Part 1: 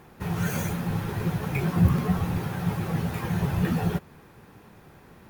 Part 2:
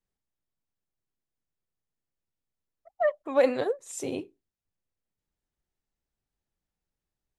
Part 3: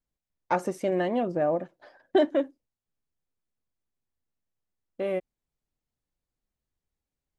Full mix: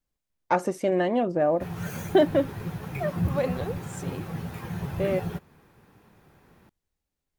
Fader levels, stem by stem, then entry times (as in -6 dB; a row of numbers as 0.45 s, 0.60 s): -6.5 dB, -5.5 dB, +2.5 dB; 1.40 s, 0.00 s, 0.00 s